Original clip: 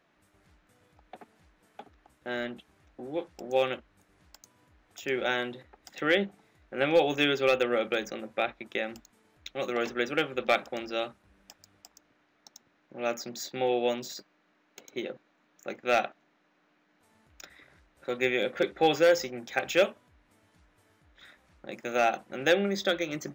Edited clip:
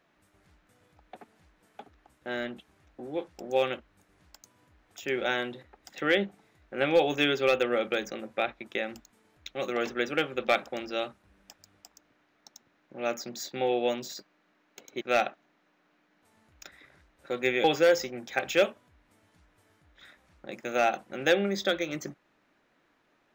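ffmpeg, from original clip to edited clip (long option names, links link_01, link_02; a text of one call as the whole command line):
ffmpeg -i in.wav -filter_complex "[0:a]asplit=3[link_01][link_02][link_03];[link_01]atrim=end=15.012[link_04];[link_02]atrim=start=15.788:end=18.422[link_05];[link_03]atrim=start=18.838[link_06];[link_04][link_05]acrossfade=duration=0.004:curve1=hsin:curve2=hsin[link_07];[link_07][link_06]acrossfade=duration=0.004:curve1=hsin:curve2=hsin" out.wav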